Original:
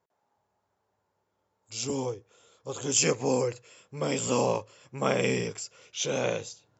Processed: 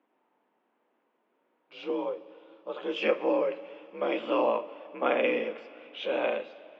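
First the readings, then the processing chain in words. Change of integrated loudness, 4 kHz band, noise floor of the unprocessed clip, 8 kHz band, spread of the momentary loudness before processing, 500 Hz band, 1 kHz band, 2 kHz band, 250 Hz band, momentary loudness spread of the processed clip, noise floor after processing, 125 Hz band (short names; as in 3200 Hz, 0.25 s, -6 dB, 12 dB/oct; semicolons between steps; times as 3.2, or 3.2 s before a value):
-1.0 dB, -6.0 dB, -78 dBFS, n/a, 16 LU, +1.0 dB, +1.5 dB, +0.5 dB, -2.0 dB, 16 LU, -75 dBFS, under -20 dB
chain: two-slope reverb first 0.26 s, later 3.2 s, from -18 dB, DRR 8 dB; added noise brown -63 dBFS; mistuned SSB +51 Hz 220–3100 Hz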